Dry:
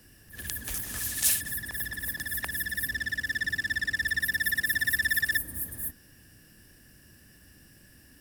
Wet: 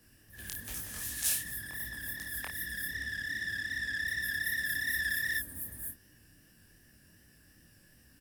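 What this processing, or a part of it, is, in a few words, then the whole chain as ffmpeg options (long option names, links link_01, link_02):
double-tracked vocal: -filter_complex "[0:a]asplit=2[link_01][link_02];[link_02]adelay=30,volume=-6dB[link_03];[link_01][link_03]amix=inputs=2:normalize=0,flanger=delay=16.5:depth=7.2:speed=2.6,volume=-3.5dB"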